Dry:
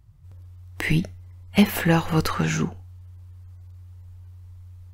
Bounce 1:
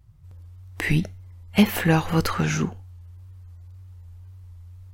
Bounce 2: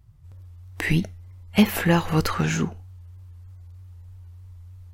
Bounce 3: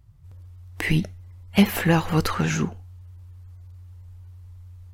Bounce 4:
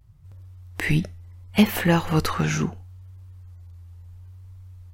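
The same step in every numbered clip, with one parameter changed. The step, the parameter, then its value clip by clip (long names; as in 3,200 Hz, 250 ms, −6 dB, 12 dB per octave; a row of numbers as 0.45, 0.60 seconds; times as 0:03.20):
pitch vibrato, speed: 1.9, 3.2, 11, 0.72 Hertz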